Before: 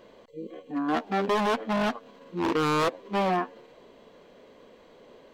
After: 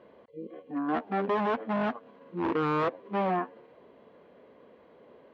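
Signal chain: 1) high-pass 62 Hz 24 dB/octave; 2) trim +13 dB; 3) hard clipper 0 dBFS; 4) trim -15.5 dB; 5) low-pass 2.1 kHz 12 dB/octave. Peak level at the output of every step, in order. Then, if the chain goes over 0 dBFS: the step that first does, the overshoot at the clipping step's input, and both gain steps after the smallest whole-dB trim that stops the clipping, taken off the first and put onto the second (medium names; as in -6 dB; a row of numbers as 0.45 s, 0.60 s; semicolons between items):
-15.5 dBFS, -2.5 dBFS, -2.5 dBFS, -18.0 dBFS, -18.5 dBFS; nothing clips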